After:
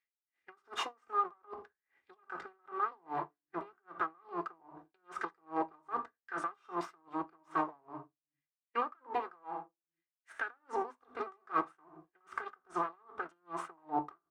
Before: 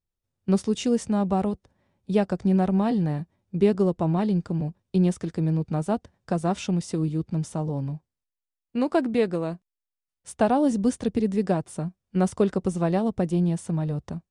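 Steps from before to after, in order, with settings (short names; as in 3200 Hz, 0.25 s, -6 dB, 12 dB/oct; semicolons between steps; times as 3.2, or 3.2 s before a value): minimum comb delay 2.5 ms; HPF 45 Hz; bell 120 Hz -4 dB 0.97 oct; notches 50/100/150/200/250 Hz; negative-ratio compressor -31 dBFS, ratio -1; one-sided clip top -23 dBFS; auto-wah 210–2000 Hz, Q 6.7, down, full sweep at -16 dBFS; echo 82 ms -23.5 dB; on a send at -9 dB: reverb RT60 0.35 s, pre-delay 3 ms; on the sum: dB-linear tremolo 2.5 Hz, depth 37 dB; gain +17.5 dB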